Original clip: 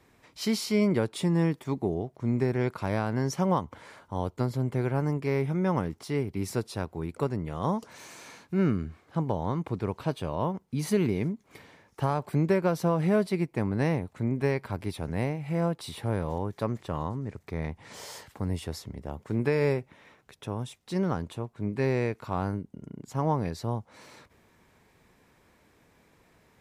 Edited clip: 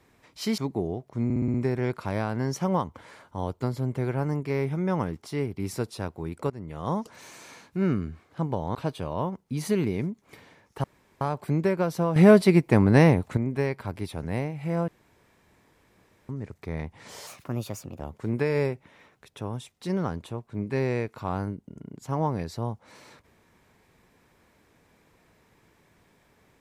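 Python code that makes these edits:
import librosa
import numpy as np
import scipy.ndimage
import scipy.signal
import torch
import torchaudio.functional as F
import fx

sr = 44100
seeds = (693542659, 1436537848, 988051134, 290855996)

y = fx.edit(x, sr, fx.cut(start_s=0.58, length_s=1.07),
    fx.stutter(start_s=2.31, slice_s=0.06, count=6),
    fx.fade_in_from(start_s=7.27, length_s=0.51, curve='qsin', floor_db=-14.0),
    fx.cut(start_s=9.52, length_s=0.45),
    fx.insert_room_tone(at_s=12.06, length_s=0.37),
    fx.clip_gain(start_s=13.01, length_s=1.21, db=9.5),
    fx.room_tone_fill(start_s=15.73, length_s=1.41),
    fx.speed_span(start_s=18.12, length_s=0.94, speed=1.29), tone=tone)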